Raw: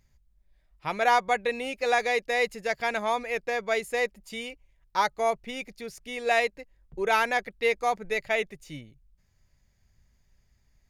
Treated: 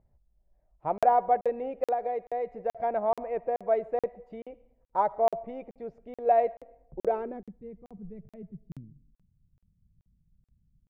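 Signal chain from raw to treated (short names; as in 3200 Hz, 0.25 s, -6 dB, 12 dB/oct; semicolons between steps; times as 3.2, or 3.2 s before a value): digital reverb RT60 0.77 s, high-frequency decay 0.75×, pre-delay 30 ms, DRR 18.5 dB; 1.87–2.75 compressor 5:1, threshold -26 dBFS, peak gain reduction 7 dB; harmonic-percussive split harmonic -4 dB; low-pass sweep 690 Hz -> 180 Hz, 7.02–7.56; crackling interface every 0.43 s, samples 2048, zero, from 0.98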